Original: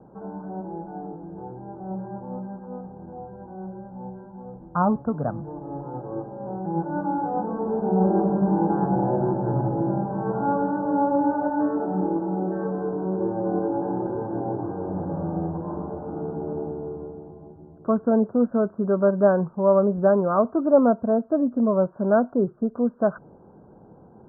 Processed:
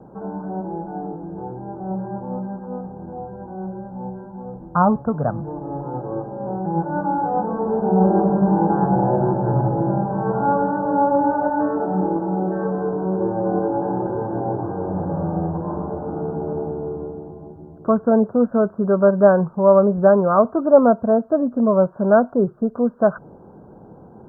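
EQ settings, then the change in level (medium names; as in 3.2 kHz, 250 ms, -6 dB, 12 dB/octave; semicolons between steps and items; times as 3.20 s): dynamic bell 290 Hz, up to -5 dB, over -35 dBFS, Q 1.8; +6.0 dB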